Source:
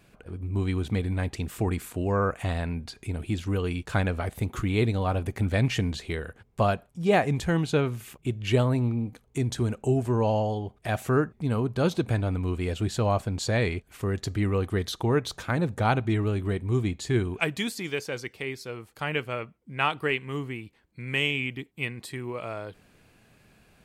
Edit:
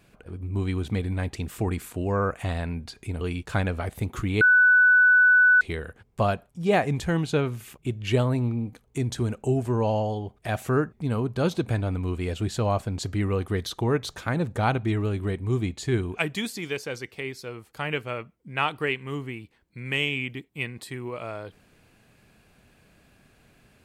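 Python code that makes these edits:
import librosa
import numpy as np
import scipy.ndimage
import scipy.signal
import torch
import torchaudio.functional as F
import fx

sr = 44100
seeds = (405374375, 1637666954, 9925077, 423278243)

y = fx.edit(x, sr, fx.cut(start_s=3.21, length_s=0.4),
    fx.bleep(start_s=4.81, length_s=1.2, hz=1490.0, db=-13.5),
    fx.cut(start_s=13.43, length_s=0.82), tone=tone)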